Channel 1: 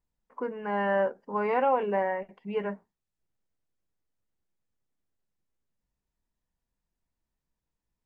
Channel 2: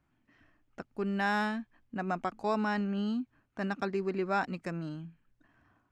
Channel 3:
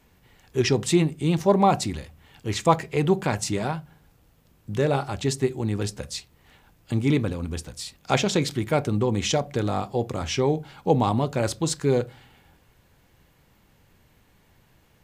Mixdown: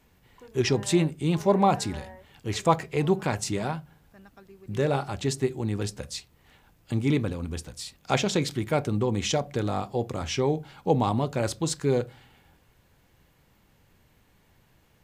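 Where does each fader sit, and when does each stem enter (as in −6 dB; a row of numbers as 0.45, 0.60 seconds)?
−17.0, −18.5, −2.5 decibels; 0.00, 0.55, 0.00 seconds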